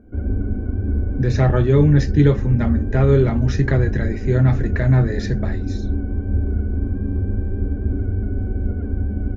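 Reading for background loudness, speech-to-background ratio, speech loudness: -24.0 LUFS, 5.5 dB, -18.5 LUFS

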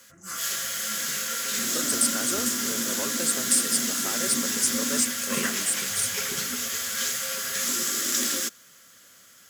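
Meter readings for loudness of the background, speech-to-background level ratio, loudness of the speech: -25.5 LUFS, -2.0 dB, -27.5 LUFS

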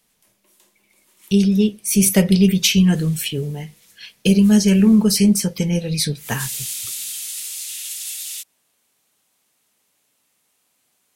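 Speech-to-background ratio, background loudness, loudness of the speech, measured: 10.5 dB, -27.0 LUFS, -16.5 LUFS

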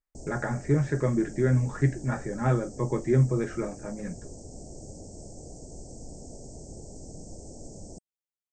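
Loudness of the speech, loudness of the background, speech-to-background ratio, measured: -27.5 LUFS, -45.0 LUFS, 17.5 dB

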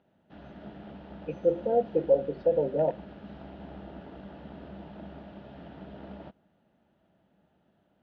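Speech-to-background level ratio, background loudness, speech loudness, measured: 18.5 dB, -46.0 LUFS, -27.5 LUFS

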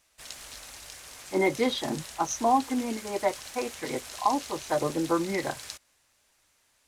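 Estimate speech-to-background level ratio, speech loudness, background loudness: 11.5 dB, -29.0 LUFS, -40.5 LUFS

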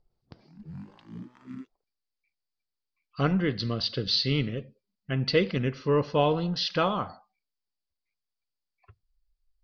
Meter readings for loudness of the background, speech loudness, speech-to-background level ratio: -45.0 LUFS, -27.0 LUFS, 18.0 dB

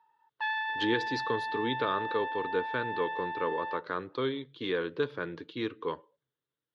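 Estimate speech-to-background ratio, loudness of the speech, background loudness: 1.0 dB, -34.0 LUFS, -35.0 LUFS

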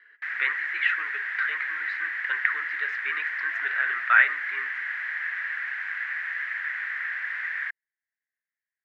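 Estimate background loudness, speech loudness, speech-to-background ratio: -29.5 LUFS, -26.5 LUFS, 3.0 dB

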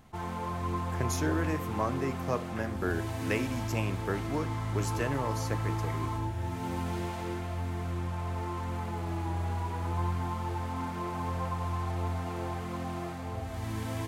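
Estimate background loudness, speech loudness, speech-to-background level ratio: -35.0 LUFS, -35.0 LUFS, 0.0 dB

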